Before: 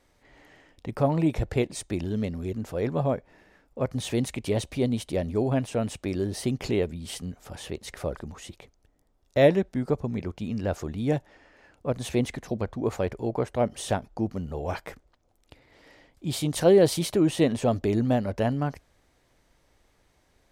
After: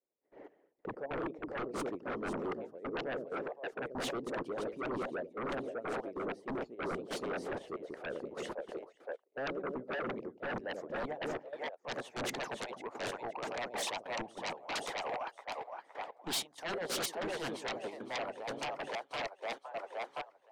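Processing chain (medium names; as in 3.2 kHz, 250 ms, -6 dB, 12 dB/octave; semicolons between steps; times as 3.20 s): band-pass sweep 440 Hz -> 900 Hz, 10.17–11.58 s; on a send: two-band feedback delay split 500 Hz, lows 89 ms, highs 516 ms, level -6 dB; on the sum: trance gate "..x..x.x.x.x.xxx" 95 bpm -12 dB; harmonic-percussive split harmonic -17 dB; reverse; compression 12:1, threshold -47 dBFS, peak gain reduction 26 dB; reverse; treble shelf 3.1 kHz +8 dB; sine folder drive 17 dB, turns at -33.5 dBFS; peaking EQ 70 Hz -11.5 dB 1 oct; three bands expanded up and down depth 70%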